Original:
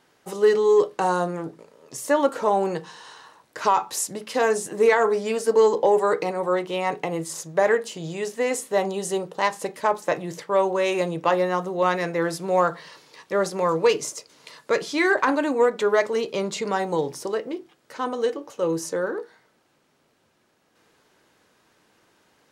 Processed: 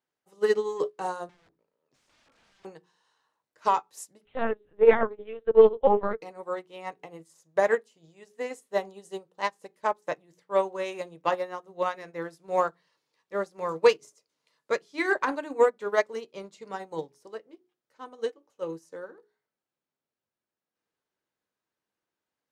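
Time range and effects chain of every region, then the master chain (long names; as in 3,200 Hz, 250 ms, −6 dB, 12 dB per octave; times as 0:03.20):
0:01.29–0:02.65: downward compressor 16 to 1, threshold −20 dBFS + wrap-around overflow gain 30.5 dB + high-frequency loss of the air 100 metres
0:04.25–0:06.22: linear-prediction vocoder at 8 kHz pitch kept + highs frequency-modulated by the lows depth 0.11 ms
whole clip: mains-hum notches 60/120/180/240/300/360/420 Hz; expander for the loud parts 2.5 to 1, over −33 dBFS; level +3 dB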